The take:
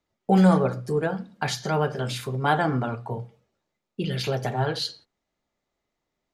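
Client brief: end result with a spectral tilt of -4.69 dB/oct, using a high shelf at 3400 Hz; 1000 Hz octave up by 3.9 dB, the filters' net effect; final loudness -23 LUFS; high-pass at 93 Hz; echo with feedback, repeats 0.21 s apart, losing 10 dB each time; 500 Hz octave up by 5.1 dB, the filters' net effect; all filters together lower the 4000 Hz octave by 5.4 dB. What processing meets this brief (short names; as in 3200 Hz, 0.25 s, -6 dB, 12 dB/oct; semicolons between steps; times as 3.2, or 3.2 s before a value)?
HPF 93 Hz; bell 500 Hz +5.5 dB; bell 1000 Hz +3.5 dB; high shelf 3400 Hz -4 dB; bell 4000 Hz -4 dB; feedback echo 0.21 s, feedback 32%, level -10 dB; gain -0.5 dB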